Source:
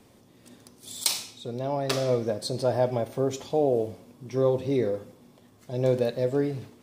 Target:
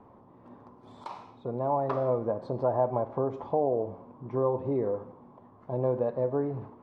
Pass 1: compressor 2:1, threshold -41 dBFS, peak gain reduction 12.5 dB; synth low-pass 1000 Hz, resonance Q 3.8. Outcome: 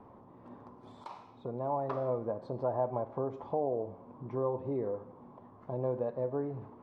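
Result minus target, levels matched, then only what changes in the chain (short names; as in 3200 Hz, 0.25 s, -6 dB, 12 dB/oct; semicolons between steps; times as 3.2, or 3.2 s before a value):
compressor: peak gain reduction +5.5 dB
change: compressor 2:1, threshold -30 dBFS, peak gain reduction 7 dB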